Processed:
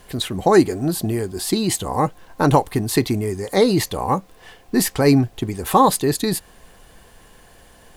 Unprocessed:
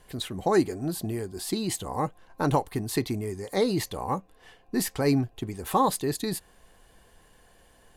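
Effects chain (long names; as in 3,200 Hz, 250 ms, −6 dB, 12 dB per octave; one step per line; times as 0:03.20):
background noise pink −66 dBFS
level +9 dB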